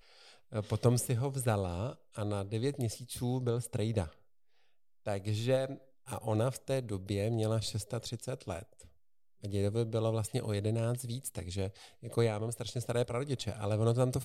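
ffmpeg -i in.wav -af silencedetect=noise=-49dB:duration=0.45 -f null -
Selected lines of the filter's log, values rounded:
silence_start: 4.13
silence_end: 5.06 | silence_duration: 0.93
silence_start: 8.85
silence_end: 9.43 | silence_duration: 0.58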